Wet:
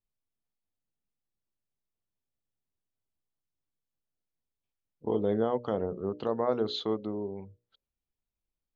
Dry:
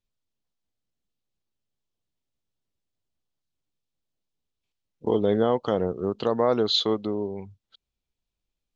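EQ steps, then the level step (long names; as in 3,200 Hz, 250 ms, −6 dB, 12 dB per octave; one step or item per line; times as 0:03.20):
high-shelf EQ 2,800 Hz −12 dB
mains-hum notches 60/120/180/240/300/360/420/480/540/600 Hz
−5.0 dB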